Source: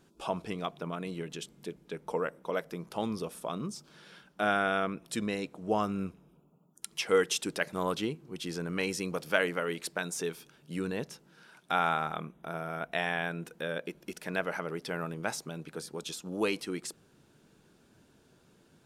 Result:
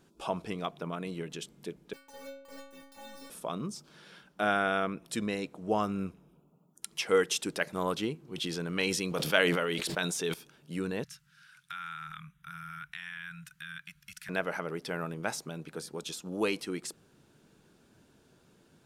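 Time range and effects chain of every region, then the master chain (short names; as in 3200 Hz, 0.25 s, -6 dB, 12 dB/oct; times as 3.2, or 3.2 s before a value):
1.93–3.3 low shelf 62 Hz +6 dB + companded quantiser 2-bit + metallic resonator 270 Hz, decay 0.74 s, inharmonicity 0.008
8.28–10.34 bell 3400 Hz +7 dB 0.71 oct + sustainer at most 30 dB/s
11.04–14.29 Chebyshev band-stop 140–1400 Hz, order 3 + compressor 4:1, threshold -38 dBFS
whole clip: dry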